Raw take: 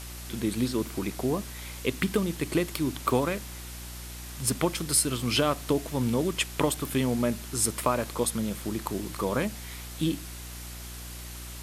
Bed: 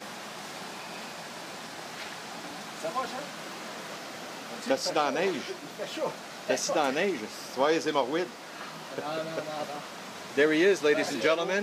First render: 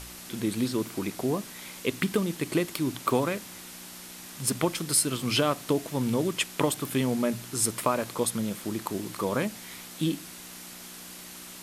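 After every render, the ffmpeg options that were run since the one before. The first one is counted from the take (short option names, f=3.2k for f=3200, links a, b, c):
-af "bandreject=f=60:t=h:w=4,bandreject=f=120:t=h:w=4"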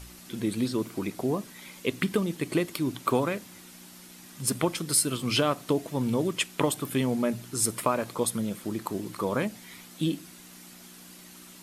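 -af "afftdn=nr=7:nf=-44"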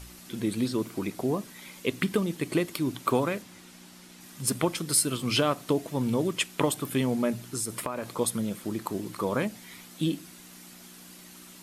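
-filter_complex "[0:a]asettb=1/sr,asplit=3[a][b][c];[a]atrim=end=3.424[d];[b]atrim=start=3.42:end=4.21,asetpts=PTS-STARTPTS,afade=t=in:d=0.004:c=qsin,afade=t=out:st=0.786:d=0.004:c=qsin,highshelf=f=11k:g=-11.5[e];[c]atrim=start=4.206[f];[d][e]acrossfade=d=0.004:c1=hsin:c2=qsin[g];[g][f]acrossfade=d=0.004:c1=qsin:c2=hsin,asettb=1/sr,asplit=3[h][i][j];[h]atrim=end=7.414[k];[i]atrim=start=7.41:end=8.19,asetpts=PTS-STARTPTS,afade=t=in:d=0.004:c=qsin,afade=t=out:st=0.776:d=0.004:c=qsin,acompressor=threshold=-27dB:ratio=6:attack=3.2:release=140:knee=1:detection=peak[l];[j]atrim=start=8.186[m];[k][l]acrossfade=d=0.004:c1=hsin:c2=qsin[n];[n][m]acrossfade=d=0.004:c1=qsin:c2=hsin"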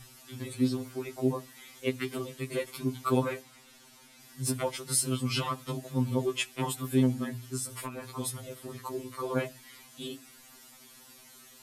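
-af "tremolo=f=67:d=0.4,afftfilt=real='re*2.45*eq(mod(b,6),0)':imag='im*2.45*eq(mod(b,6),0)':win_size=2048:overlap=0.75"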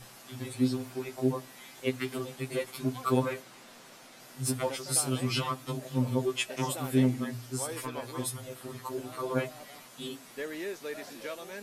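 -filter_complex "[1:a]volume=-14.5dB[a];[0:a][a]amix=inputs=2:normalize=0"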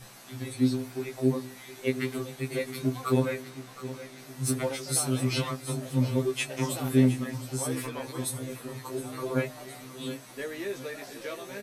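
-filter_complex "[0:a]asplit=2[a][b];[b]adelay=15,volume=-4.5dB[c];[a][c]amix=inputs=2:normalize=0,aecho=1:1:716|1432|2148|2864|3580|4296:0.2|0.114|0.0648|0.037|0.0211|0.012"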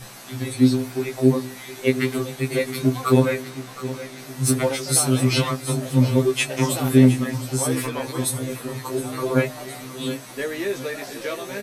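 -af "volume=8.5dB,alimiter=limit=-3dB:level=0:latency=1"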